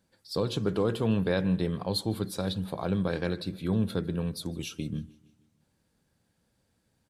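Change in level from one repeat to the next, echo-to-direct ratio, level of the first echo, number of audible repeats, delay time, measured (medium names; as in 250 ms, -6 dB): -5.0 dB, -22.5 dB, -24.0 dB, 3, 155 ms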